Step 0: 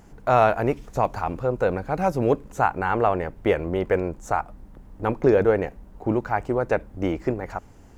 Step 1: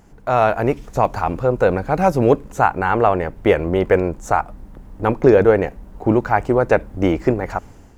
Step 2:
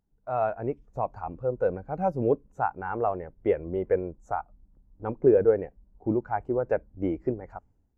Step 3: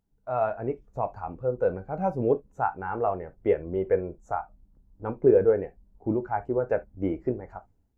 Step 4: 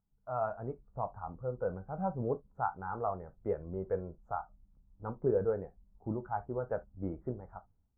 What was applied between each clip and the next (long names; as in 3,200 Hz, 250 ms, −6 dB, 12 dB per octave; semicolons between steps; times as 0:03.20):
automatic gain control
every bin expanded away from the loudest bin 1.5 to 1; level −8.5 dB
reverb whose tail is shaped and stops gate 90 ms falling, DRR 9 dB
drawn EQ curve 190 Hz 0 dB, 320 Hz −8 dB, 1,300 Hz +1 dB, 2,100 Hz −17 dB, 4,000 Hz −29 dB; level −5 dB